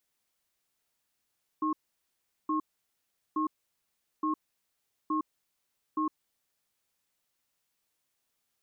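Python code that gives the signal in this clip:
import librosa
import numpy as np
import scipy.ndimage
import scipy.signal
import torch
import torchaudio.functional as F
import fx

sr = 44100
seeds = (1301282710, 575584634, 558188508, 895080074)

y = fx.cadence(sr, length_s=5.15, low_hz=310.0, high_hz=1080.0, on_s=0.11, off_s=0.76, level_db=-29.0)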